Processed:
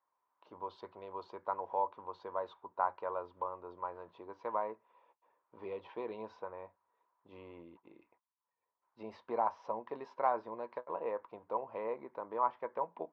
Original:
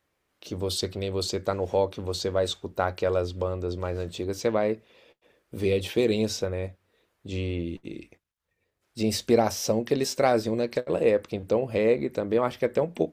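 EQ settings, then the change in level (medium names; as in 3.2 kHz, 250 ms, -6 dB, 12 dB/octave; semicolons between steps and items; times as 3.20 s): band-pass filter 980 Hz, Q 10; distance through air 240 m; +8.0 dB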